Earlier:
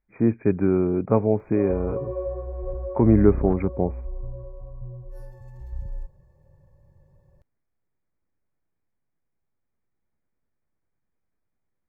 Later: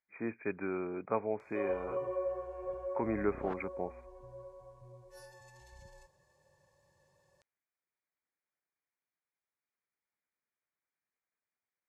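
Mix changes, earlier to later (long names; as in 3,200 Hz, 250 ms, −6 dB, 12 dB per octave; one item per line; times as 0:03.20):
speech −6.5 dB
master: add meter weighting curve ITU-R 468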